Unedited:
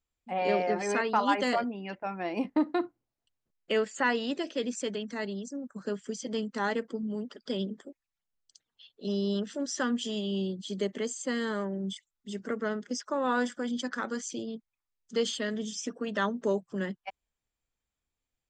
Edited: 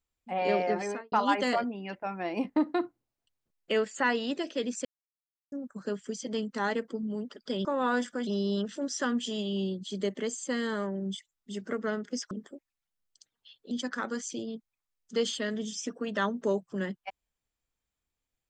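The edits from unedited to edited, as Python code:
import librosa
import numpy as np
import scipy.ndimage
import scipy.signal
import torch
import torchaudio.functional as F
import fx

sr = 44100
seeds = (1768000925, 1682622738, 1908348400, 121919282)

y = fx.studio_fade_out(x, sr, start_s=0.77, length_s=0.35)
y = fx.edit(y, sr, fx.silence(start_s=4.85, length_s=0.67),
    fx.swap(start_s=7.65, length_s=1.4, other_s=13.09, other_length_s=0.62), tone=tone)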